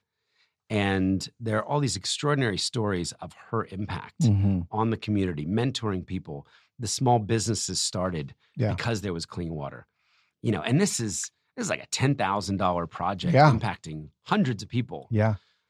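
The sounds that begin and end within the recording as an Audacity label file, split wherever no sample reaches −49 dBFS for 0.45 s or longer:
0.700000	9.830000	sound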